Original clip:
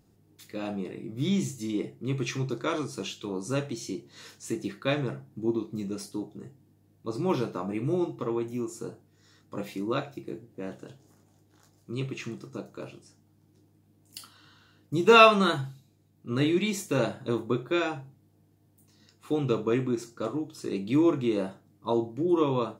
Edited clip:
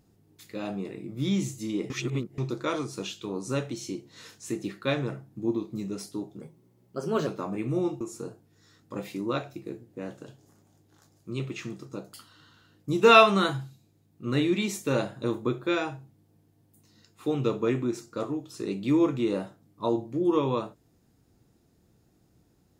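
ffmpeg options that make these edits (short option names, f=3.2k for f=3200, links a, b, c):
-filter_complex "[0:a]asplit=7[a][b][c][d][e][f][g];[a]atrim=end=1.902[h];[b]atrim=start=1.898:end=2.382,asetpts=PTS-STARTPTS,areverse[i];[c]atrim=start=2.378:end=6.414[j];[d]atrim=start=6.41:end=7.43,asetpts=PTS-STARTPTS,asetrate=52479,aresample=44100[k];[e]atrim=start=7.426:end=8.172[l];[f]atrim=start=8.618:end=12.752[m];[g]atrim=start=14.178[n];[h][i]acrossfade=d=0.004:c1=hsin:c2=hsin[o];[o][j]acrossfade=d=0.004:c1=hsin:c2=hsin[p];[p][k]acrossfade=d=0.004:c1=hsin:c2=hsin[q];[q][l]acrossfade=d=0.004:c1=hsin:c2=hsin[r];[r][m]acrossfade=d=0.004:c1=hsin:c2=hsin[s];[s][n]acrossfade=d=0.004:c1=hsin:c2=hsin"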